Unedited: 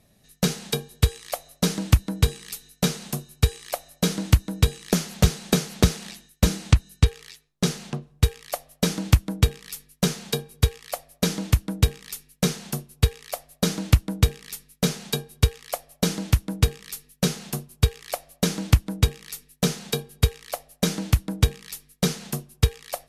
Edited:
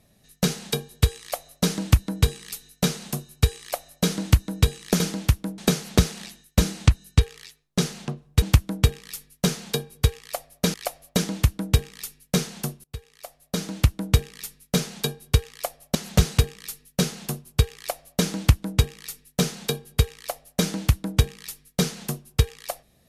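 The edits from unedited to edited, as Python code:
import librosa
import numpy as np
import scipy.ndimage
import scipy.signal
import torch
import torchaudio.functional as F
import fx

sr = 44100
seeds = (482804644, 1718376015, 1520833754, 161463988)

y = fx.edit(x, sr, fx.swap(start_s=5.0, length_s=0.43, other_s=16.04, other_length_s=0.58),
    fx.cut(start_s=8.27, length_s=0.74),
    fx.fade_in_from(start_s=12.93, length_s=1.31, floor_db=-23.5),
    fx.duplicate(start_s=18.01, length_s=0.5, to_s=11.33), tone=tone)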